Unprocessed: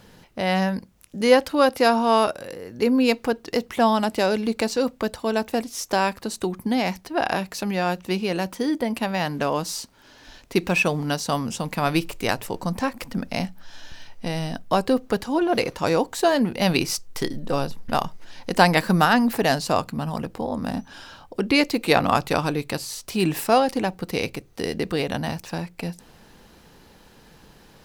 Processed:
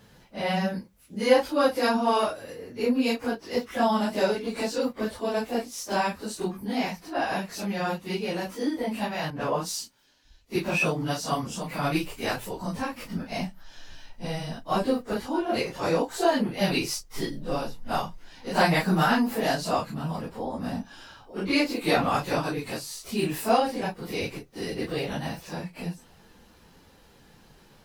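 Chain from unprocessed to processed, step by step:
random phases in long frames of 100 ms
0:09.30–0:10.56: multiband upward and downward expander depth 70%
level −4.5 dB

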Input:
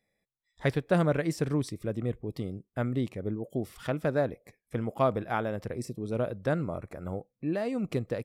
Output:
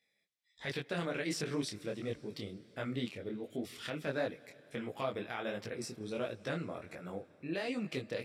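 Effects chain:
meter weighting curve D
brickwall limiter −19 dBFS, peak gain reduction 10.5 dB
on a send at −19.5 dB: convolution reverb RT60 4.0 s, pre-delay 160 ms
on the sum: micro pitch shift up and down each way 49 cents
level −2 dB

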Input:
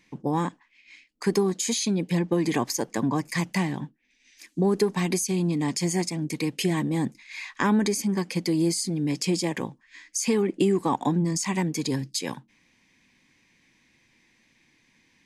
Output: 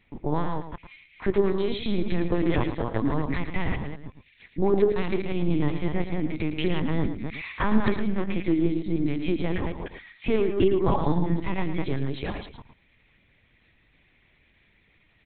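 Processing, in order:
delay that plays each chunk backwards 152 ms, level −4 dB
linear-prediction vocoder at 8 kHz pitch kept
single-tap delay 111 ms −10 dB

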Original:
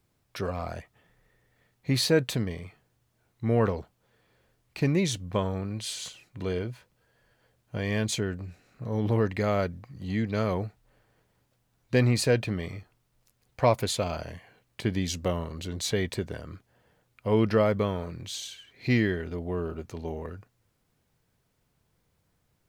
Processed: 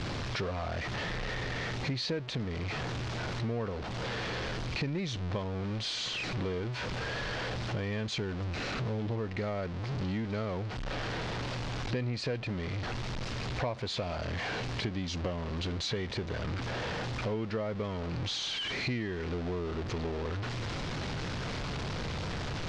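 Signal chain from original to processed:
converter with a step at zero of −28 dBFS
low-pass filter 5,100 Hz 24 dB per octave
downward compressor 5 to 1, threshold −32 dBFS, peak gain reduction 14.5 dB

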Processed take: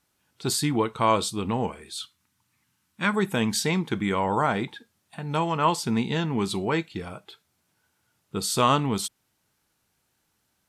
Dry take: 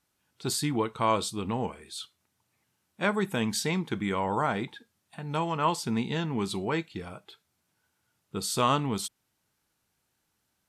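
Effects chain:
0:02.00–0:03.14: flat-topped bell 530 Hz −10.5 dB 1.3 octaves
level +4 dB

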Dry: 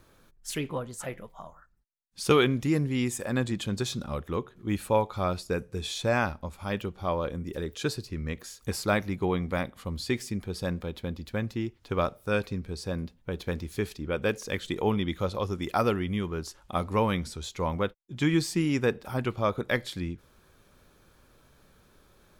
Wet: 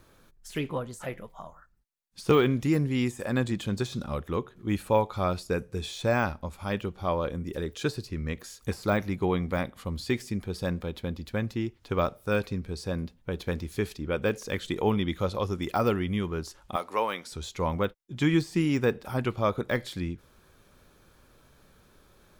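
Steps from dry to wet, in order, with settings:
0:16.76–0:17.32: high-pass filter 510 Hz 12 dB per octave
de-essing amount 95%
level +1 dB

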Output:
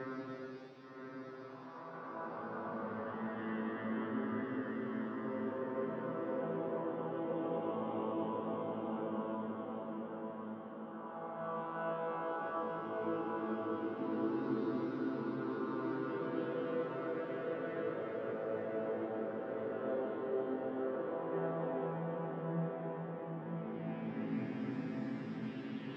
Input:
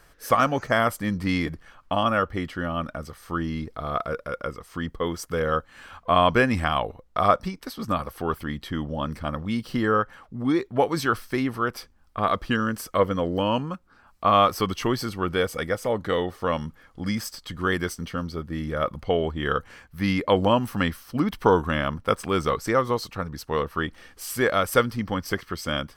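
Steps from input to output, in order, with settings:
vocoder with an arpeggio as carrier minor triad, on A2, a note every 373 ms
high-pass filter 210 Hz 24 dB per octave
harmonic and percussive parts rebalanced harmonic −13 dB
reversed playback
downward compressor, threshold −44 dBFS, peak gain reduction 23.5 dB
reversed playback
brickwall limiter −38 dBFS, peak gain reduction 6 dB
extreme stretch with random phases 4.5×, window 0.50 s, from 0:11.71
high-frequency loss of the air 500 metres
on a send: feedback delay with all-pass diffusion 1,027 ms, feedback 53%, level −3.5 dB
on the sum: level +9 dB

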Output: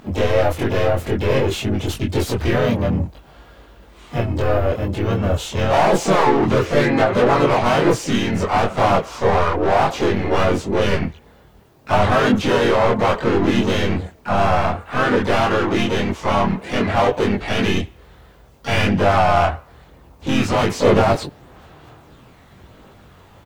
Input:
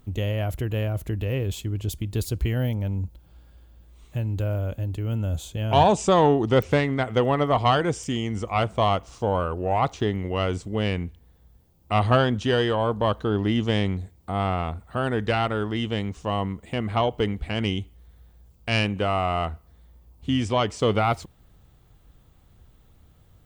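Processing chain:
mid-hump overdrive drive 32 dB, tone 1,500 Hz, clips at −4.5 dBFS
pitch-shifted copies added −3 semitones −3 dB, +3 semitones −6 dB, +12 semitones −13 dB
multi-voice chorus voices 4, 0.52 Hz, delay 23 ms, depth 3.1 ms
level −2.5 dB

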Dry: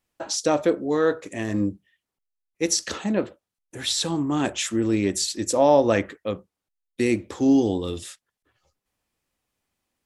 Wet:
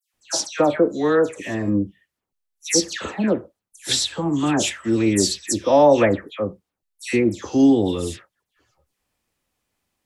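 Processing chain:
all-pass dispersion lows, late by 141 ms, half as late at 2,300 Hz
level +3.5 dB

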